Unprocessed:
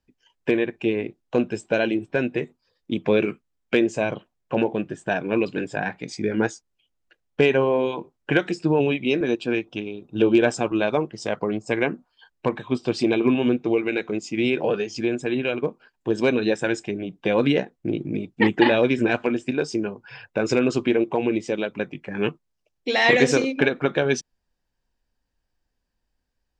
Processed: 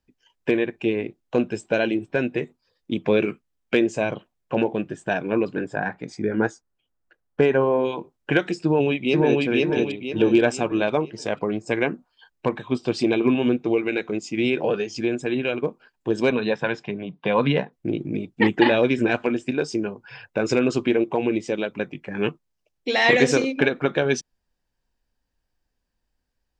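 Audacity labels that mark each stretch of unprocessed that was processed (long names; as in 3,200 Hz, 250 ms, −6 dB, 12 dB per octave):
5.320000	7.850000	high shelf with overshoot 2,000 Hz −6.5 dB, Q 1.5
8.590000	9.420000	delay throw 490 ms, feedback 40%, level −0.5 dB
16.300000	17.730000	loudspeaker in its box 110–4,500 Hz, peaks and dips at 150 Hz +7 dB, 330 Hz −8 dB, 1,000 Hz +9 dB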